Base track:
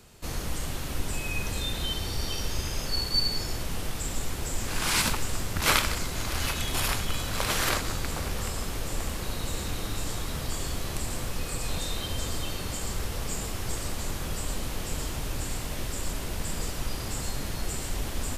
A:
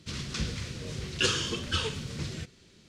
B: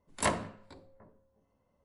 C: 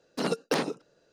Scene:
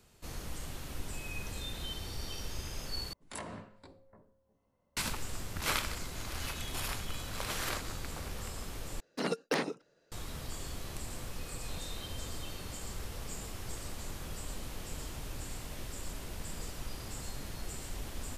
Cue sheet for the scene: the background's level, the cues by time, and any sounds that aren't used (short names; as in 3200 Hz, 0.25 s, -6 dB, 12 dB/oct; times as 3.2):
base track -9.5 dB
3.13 replace with B -2 dB + compressor 5:1, threshold -37 dBFS
9 replace with C -5 dB + bell 2000 Hz +5.5 dB 0.54 oct
not used: A